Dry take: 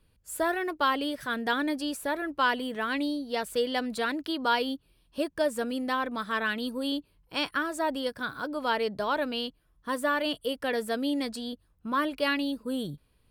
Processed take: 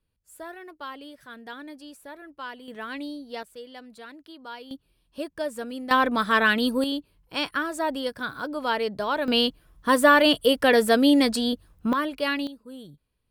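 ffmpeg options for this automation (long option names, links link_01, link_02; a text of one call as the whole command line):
ffmpeg -i in.wav -af "asetnsamples=nb_out_samples=441:pad=0,asendcmd='2.68 volume volume -5dB;3.43 volume volume -14dB;4.71 volume volume -3dB;5.91 volume volume 9dB;6.84 volume volume 2dB;9.28 volume volume 11dB;11.93 volume volume 1dB;12.47 volume volume -10dB',volume=-12dB" out.wav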